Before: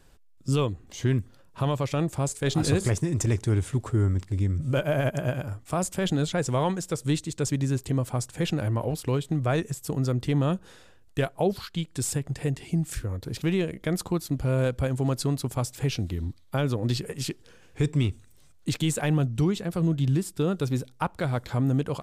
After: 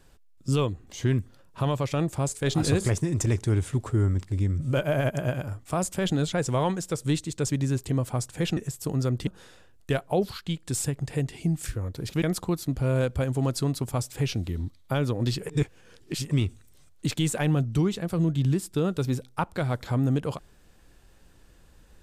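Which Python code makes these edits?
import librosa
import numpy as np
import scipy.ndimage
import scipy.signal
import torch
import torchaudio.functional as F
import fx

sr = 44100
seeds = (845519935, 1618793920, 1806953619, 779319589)

y = fx.edit(x, sr, fx.cut(start_s=8.57, length_s=1.03),
    fx.cut(start_s=10.3, length_s=0.25),
    fx.cut(start_s=13.5, length_s=0.35),
    fx.reverse_span(start_s=17.12, length_s=0.82), tone=tone)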